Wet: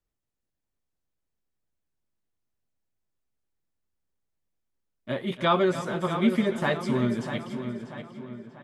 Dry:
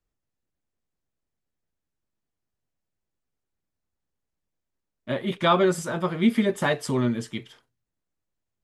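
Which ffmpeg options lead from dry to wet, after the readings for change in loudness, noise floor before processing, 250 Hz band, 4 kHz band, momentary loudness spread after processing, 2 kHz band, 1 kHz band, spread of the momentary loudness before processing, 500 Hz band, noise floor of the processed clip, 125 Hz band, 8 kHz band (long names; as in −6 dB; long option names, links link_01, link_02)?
−2.5 dB, −84 dBFS, −1.5 dB, −2.5 dB, 17 LU, −2.0 dB, −2.0 dB, 11 LU, −2.0 dB, −83 dBFS, −1.5 dB, −9.0 dB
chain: -filter_complex "[0:a]asplit=2[link_01][link_02];[link_02]aecho=0:1:287|574|861|1148:0.2|0.0778|0.0303|0.0118[link_03];[link_01][link_03]amix=inputs=2:normalize=0,acrossover=split=5000[link_04][link_05];[link_05]acompressor=threshold=-47dB:ratio=4:attack=1:release=60[link_06];[link_04][link_06]amix=inputs=2:normalize=0,asplit=2[link_07][link_08];[link_08]adelay=641,lowpass=frequency=3600:poles=1,volume=-9dB,asplit=2[link_09][link_10];[link_10]adelay=641,lowpass=frequency=3600:poles=1,volume=0.47,asplit=2[link_11][link_12];[link_12]adelay=641,lowpass=frequency=3600:poles=1,volume=0.47,asplit=2[link_13][link_14];[link_14]adelay=641,lowpass=frequency=3600:poles=1,volume=0.47,asplit=2[link_15][link_16];[link_16]adelay=641,lowpass=frequency=3600:poles=1,volume=0.47[link_17];[link_09][link_11][link_13][link_15][link_17]amix=inputs=5:normalize=0[link_18];[link_07][link_18]amix=inputs=2:normalize=0,volume=-2.5dB"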